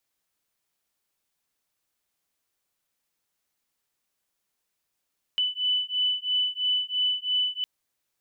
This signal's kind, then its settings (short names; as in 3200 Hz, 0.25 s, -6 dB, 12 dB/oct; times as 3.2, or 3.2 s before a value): beating tones 2990 Hz, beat 3 Hz, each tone -26.5 dBFS 2.26 s